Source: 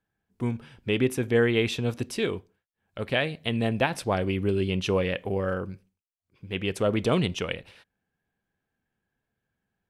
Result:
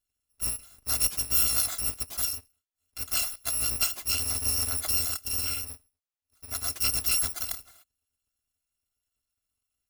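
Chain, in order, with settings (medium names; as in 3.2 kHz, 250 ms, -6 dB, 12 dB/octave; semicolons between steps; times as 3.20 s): bit-reversed sample order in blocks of 256 samples; vibrato 7.7 Hz 18 cents; trim -2 dB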